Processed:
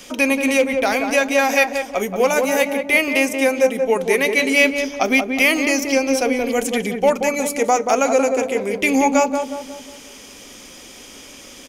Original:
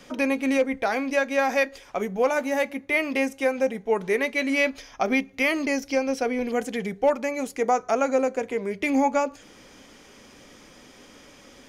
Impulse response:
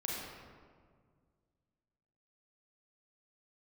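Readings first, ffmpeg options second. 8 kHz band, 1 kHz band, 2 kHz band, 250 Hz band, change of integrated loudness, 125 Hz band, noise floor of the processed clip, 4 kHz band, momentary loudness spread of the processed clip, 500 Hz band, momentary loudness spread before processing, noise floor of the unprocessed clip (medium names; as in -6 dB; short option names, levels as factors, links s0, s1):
+14.0 dB, +6.0 dB, +8.5 dB, +6.0 dB, +7.0 dB, no reading, -41 dBFS, +11.0 dB, 6 LU, +6.5 dB, 5 LU, -51 dBFS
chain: -filter_complex "[0:a]equalizer=f=140:t=o:w=0.73:g=-4.5,asplit=2[s0][s1];[s1]adelay=181,lowpass=f=1100:p=1,volume=0.631,asplit=2[s2][s3];[s3]adelay=181,lowpass=f=1100:p=1,volume=0.51,asplit=2[s4][s5];[s5]adelay=181,lowpass=f=1100:p=1,volume=0.51,asplit=2[s6][s7];[s7]adelay=181,lowpass=f=1100:p=1,volume=0.51,asplit=2[s8][s9];[s9]adelay=181,lowpass=f=1100:p=1,volume=0.51,asplit=2[s10][s11];[s11]adelay=181,lowpass=f=1100:p=1,volume=0.51,asplit=2[s12][s13];[s13]adelay=181,lowpass=f=1100:p=1,volume=0.51[s14];[s2][s4][s6][s8][s10][s12][s14]amix=inputs=7:normalize=0[s15];[s0][s15]amix=inputs=2:normalize=0,aexciter=amount=1.3:drive=9:freq=2400,volume=1.78"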